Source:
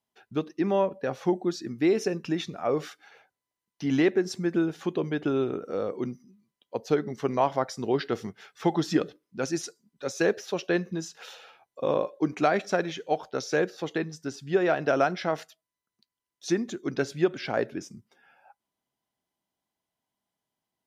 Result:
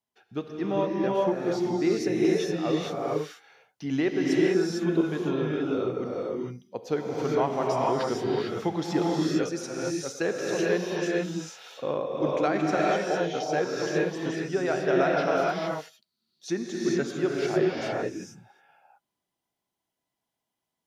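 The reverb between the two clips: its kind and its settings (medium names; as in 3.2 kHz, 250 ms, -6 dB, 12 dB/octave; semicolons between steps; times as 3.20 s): gated-style reverb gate 480 ms rising, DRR -3.5 dB; trim -4 dB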